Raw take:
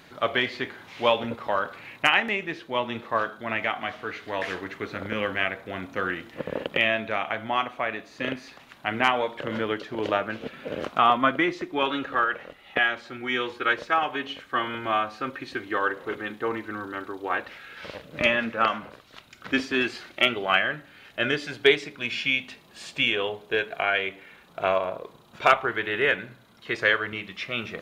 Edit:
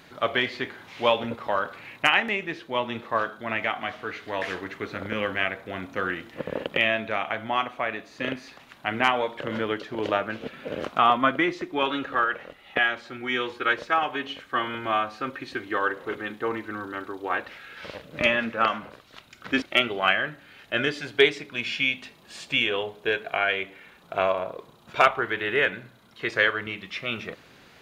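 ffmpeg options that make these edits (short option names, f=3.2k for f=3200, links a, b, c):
-filter_complex "[0:a]asplit=2[a][b];[a]atrim=end=19.622[c];[b]atrim=start=20.078[d];[c][d]acrossfade=d=0.004:c1=hsin:c2=hsin"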